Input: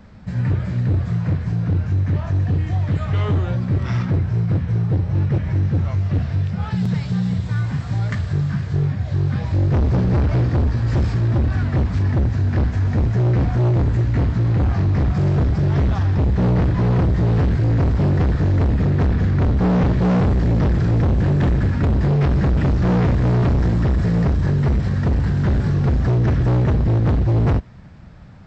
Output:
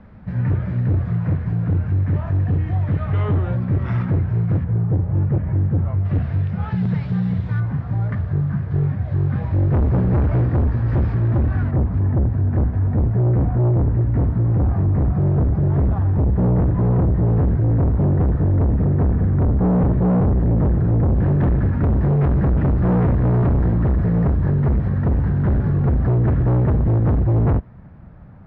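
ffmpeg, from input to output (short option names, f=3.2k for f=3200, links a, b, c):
-af "asetnsamples=n=441:p=0,asendcmd='4.64 lowpass f 1200;6.05 lowpass f 2200;7.6 lowpass f 1300;8.71 lowpass f 1700;11.71 lowpass f 1000;21.16 lowpass f 1400',lowpass=2k"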